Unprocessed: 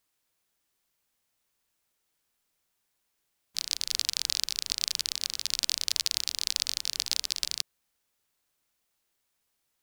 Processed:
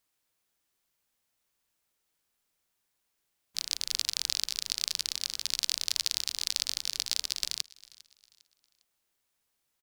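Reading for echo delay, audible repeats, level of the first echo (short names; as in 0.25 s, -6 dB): 0.403 s, 2, -22.0 dB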